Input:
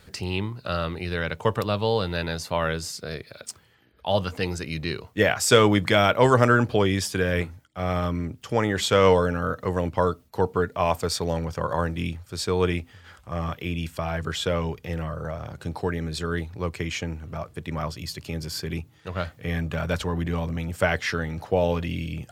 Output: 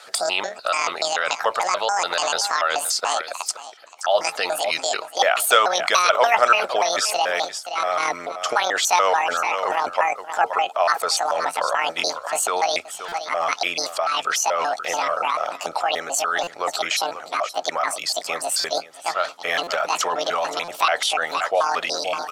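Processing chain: trilling pitch shifter +10 st, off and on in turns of 0.145 s; LPF 8100 Hz 12 dB/oct; high shelf 2800 Hz +11.5 dB; on a send: echo 0.524 s -16 dB; on the sum: harmonic-percussive split percussive +7 dB; resonant high-pass 670 Hz, resonance Q 3.5; bell 1300 Hz +11 dB 0.24 oct; in parallel at +2 dB: negative-ratio compressor -22 dBFS, ratio -1; on the sum: stuck buffer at 13.08/16.43/18.6/19.63/20.64, samples 256, times 6; gain -10.5 dB

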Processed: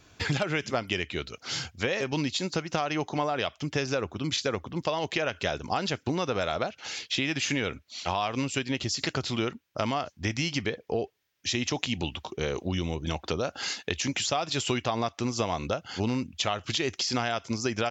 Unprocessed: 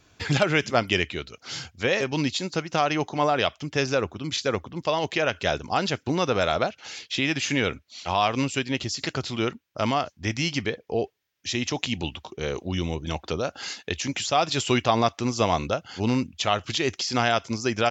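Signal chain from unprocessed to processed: compressor, threshold -27 dBFS, peak gain reduction 11.5 dB; gain +2 dB

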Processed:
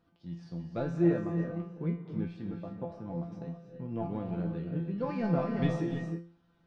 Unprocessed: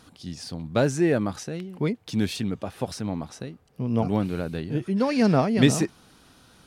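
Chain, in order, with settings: 1.2–3.22 high shelf 2500 Hz -10 dB; sample leveller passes 1; tape spacing loss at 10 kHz 33 dB; resonator 170 Hz, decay 0.39 s, harmonics all, mix 90%; reverb, pre-delay 3 ms, DRR 5.5 dB

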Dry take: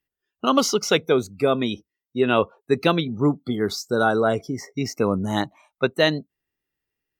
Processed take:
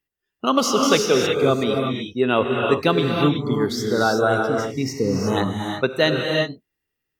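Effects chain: non-linear reverb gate 0.39 s rising, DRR 0.5 dB; spectral repair 4.97–5.2, 530–4700 Hz both

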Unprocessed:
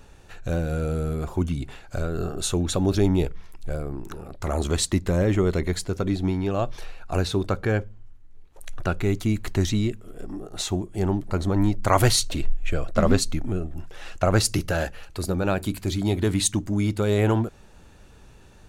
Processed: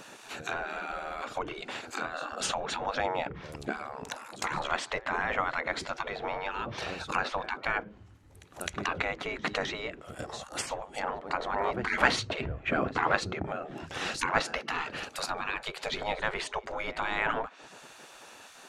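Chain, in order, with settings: pre-echo 0.259 s -22 dB; treble ducked by the level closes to 1800 Hz, closed at -20.5 dBFS; spectral gate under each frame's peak -20 dB weak; gain +9 dB

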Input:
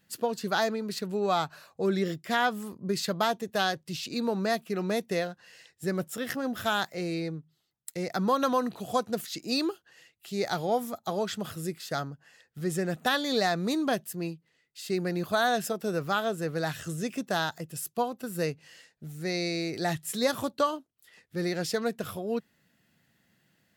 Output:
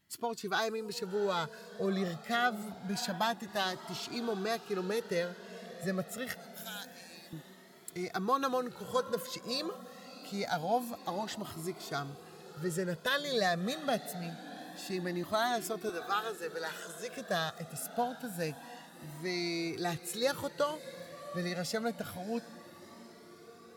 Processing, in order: 6.34–7.33 differentiator; 15.89–17.16 HPF 510 Hz 12 dB/oct; diffused feedback echo 0.677 s, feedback 65%, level -15.5 dB; cascading flanger rising 0.26 Hz

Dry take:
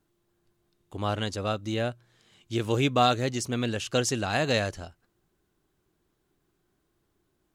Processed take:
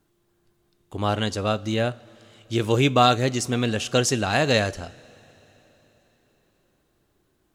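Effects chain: two-slope reverb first 0.28 s, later 4.3 s, from -20 dB, DRR 15 dB; gain +5 dB

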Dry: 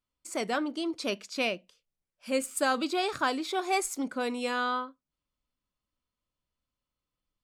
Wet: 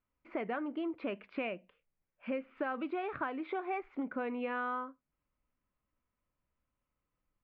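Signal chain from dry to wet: steep low-pass 2500 Hz 36 dB/oct; compressor, threshold -37 dBFS, peak gain reduction 13.5 dB; gain +3 dB

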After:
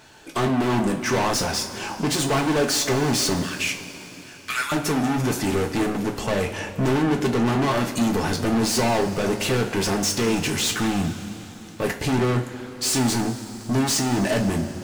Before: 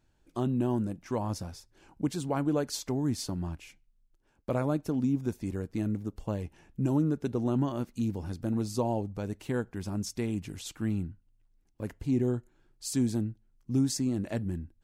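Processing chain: 3.42–4.72 steep high-pass 1500 Hz 36 dB/oct; overdrive pedal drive 35 dB, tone 7500 Hz, clips at -16 dBFS; two-slope reverb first 0.26 s, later 4.1 s, from -18 dB, DRR 2 dB

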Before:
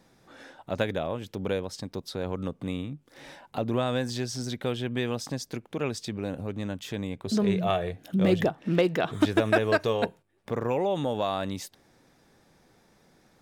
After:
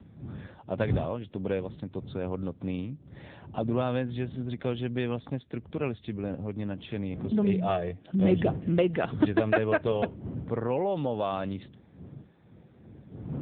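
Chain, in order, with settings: wind noise 140 Hz -39 dBFS, from 5.35 s 81 Hz, from 6.57 s 200 Hz; low shelf 150 Hz +3 dB; gain -1 dB; AMR-NB 7.95 kbps 8000 Hz

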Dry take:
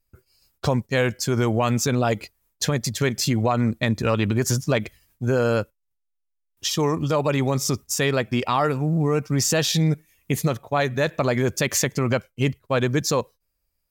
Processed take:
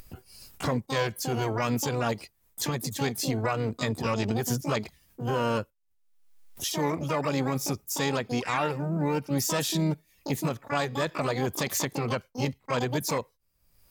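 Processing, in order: upward compressor, threshold -23 dBFS; harmoniser +3 st -15 dB, +12 st -4 dB; gain -8 dB

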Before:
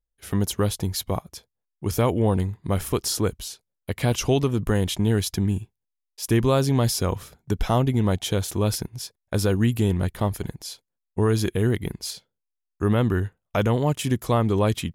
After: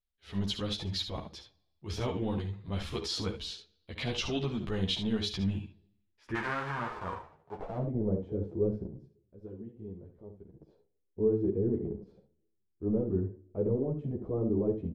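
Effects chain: 6.34–7.77 spectral whitening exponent 0.1; 8.97–10.53 pre-emphasis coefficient 0.9; transient shaper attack -11 dB, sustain +1 dB; compressor 4:1, threshold -23 dBFS, peak gain reduction 7 dB; low-pass sweep 3800 Hz -> 430 Hz, 5.27–8.25; early reflections 52 ms -14 dB, 71 ms -9.5 dB; on a send at -18 dB: reverb RT60 0.90 s, pre-delay 3 ms; on the sum: ensemble effect; gain -3 dB

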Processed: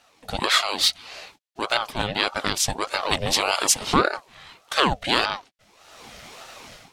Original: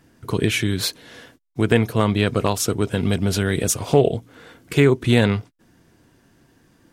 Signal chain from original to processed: weighting filter D; AGC gain up to 16.5 dB; ring modulator with a swept carrier 690 Hz, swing 55%, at 1.7 Hz; gain -1 dB

